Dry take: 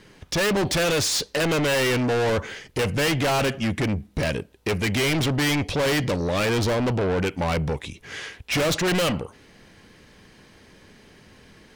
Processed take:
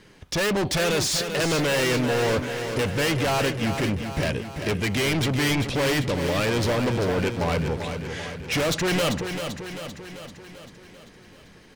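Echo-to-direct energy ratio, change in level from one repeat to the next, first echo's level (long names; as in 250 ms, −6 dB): −6.0 dB, −4.5 dB, −8.0 dB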